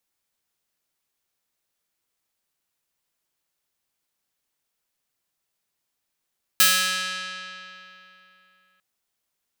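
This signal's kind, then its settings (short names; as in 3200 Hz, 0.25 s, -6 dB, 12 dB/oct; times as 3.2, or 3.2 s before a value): plucked string F#3, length 2.20 s, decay 3.15 s, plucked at 0.49, bright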